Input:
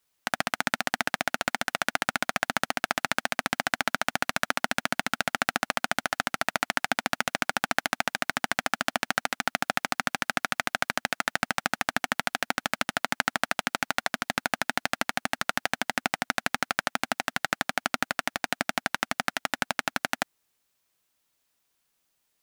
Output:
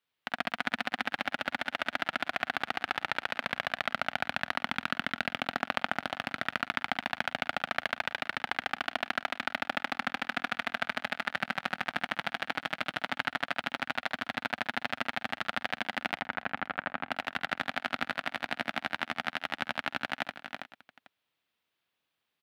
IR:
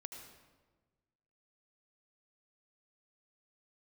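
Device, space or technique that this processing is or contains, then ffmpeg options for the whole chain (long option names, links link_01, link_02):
ducked delay: -filter_complex "[0:a]asettb=1/sr,asplit=3[link_01][link_02][link_03];[link_01]atrim=end=16.154[link_04];[link_02]atrim=start=16.15:end=17.11,asetpts=PTS-STARTPTS,afade=type=in:duration=0.004:curve=qsin,afade=type=out:start_time=0.956:duration=0.004:curve=qsin,lowpass=2000[link_05];[link_03]atrim=start=17.106[link_06];[link_04][link_05]acrossfade=duration=0.004:curve1=hsin:curve2=qsin[link_07];[link_07][link_06]acrossfade=duration=0.004:curve1=qsin:curve2=hsin,highpass=frequency=71:width=0.5412,highpass=frequency=71:width=1.3066,highshelf=frequency=4800:width_type=q:width=1.5:gain=-12,aecho=1:1:48|71|517:0.133|0.668|0.112,asplit=3[link_08][link_09][link_10];[link_09]adelay=326,volume=-4dB[link_11];[link_10]apad=whole_len=1026161[link_12];[link_11][link_12]sidechaincompress=threshold=-33dB:ratio=12:attack=16:release=314[link_13];[link_08][link_13]amix=inputs=2:normalize=0,volume=-7dB"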